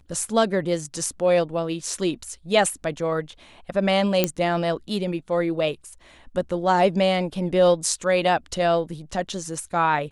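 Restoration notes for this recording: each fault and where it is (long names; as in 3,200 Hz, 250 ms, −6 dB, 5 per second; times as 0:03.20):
0:04.24: click −4 dBFS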